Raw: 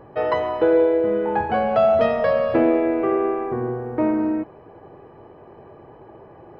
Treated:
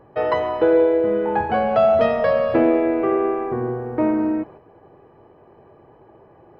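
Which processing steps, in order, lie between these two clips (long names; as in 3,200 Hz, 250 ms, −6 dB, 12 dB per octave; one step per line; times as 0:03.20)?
noise gate −41 dBFS, range −6 dB
level +1 dB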